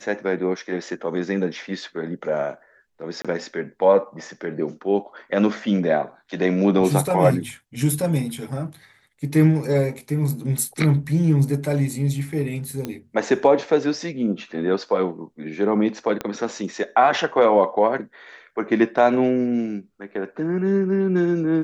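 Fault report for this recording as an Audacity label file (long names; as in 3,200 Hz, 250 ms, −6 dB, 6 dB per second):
3.220000	3.250000	drop-out 26 ms
12.850000	12.850000	click −14 dBFS
16.210000	16.210000	click −12 dBFS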